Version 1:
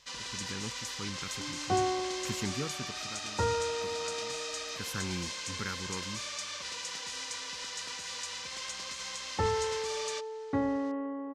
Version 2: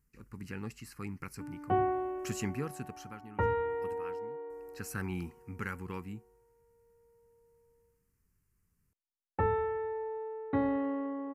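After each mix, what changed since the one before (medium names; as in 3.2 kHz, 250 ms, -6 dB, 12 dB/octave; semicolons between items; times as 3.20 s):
first sound: muted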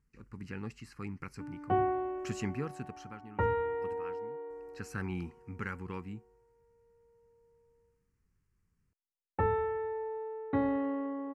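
speech: add distance through air 72 m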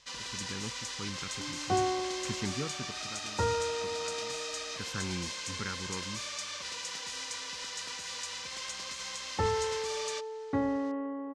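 first sound: unmuted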